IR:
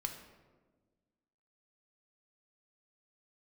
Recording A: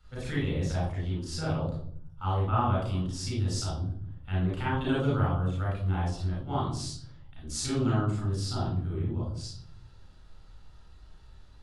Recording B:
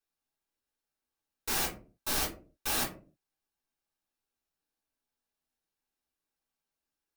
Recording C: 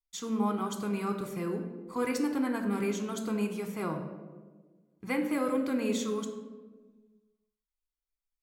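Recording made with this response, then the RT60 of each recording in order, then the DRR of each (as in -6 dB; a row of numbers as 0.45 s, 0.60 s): C; 0.60 s, 0.40 s, 1.4 s; -6.5 dB, -5.5 dB, 4.0 dB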